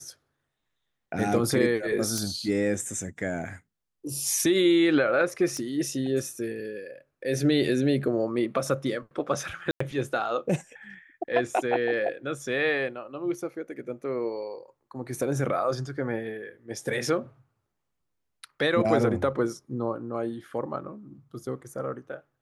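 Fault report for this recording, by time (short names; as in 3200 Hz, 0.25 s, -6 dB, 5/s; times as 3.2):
2.18 pop -15 dBFS
5.57 pop -21 dBFS
9.71–9.8 gap 94 ms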